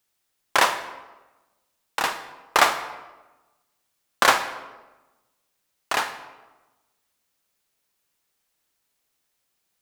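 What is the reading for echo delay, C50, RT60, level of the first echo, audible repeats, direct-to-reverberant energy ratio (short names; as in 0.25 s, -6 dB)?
none, 10.5 dB, 1.1 s, none, none, 9.5 dB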